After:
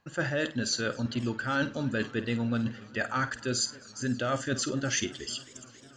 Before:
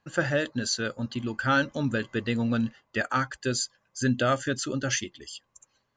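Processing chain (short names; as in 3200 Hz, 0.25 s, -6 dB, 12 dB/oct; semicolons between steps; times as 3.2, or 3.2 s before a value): reverse; compressor, threshold -32 dBFS, peak gain reduction 12.5 dB; reverse; flutter echo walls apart 8.7 m, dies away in 0.24 s; warbling echo 0.269 s, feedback 80%, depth 152 cents, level -23 dB; gain +5 dB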